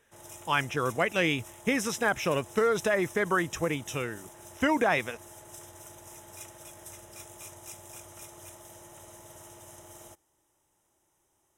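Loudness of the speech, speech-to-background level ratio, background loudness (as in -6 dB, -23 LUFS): -28.5 LUFS, 18.5 dB, -47.0 LUFS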